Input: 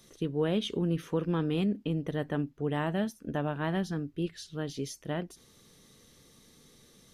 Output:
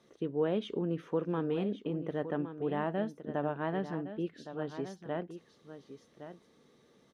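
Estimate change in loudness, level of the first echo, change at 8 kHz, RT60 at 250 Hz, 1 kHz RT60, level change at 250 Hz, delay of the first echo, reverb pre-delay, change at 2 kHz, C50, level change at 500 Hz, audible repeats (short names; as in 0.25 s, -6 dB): -3.0 dB, -11.5 dB, under -15 dB, none, none, -4.0 dB, 1.114 s, none, -4.5 dB, none, 0.0 dB, 1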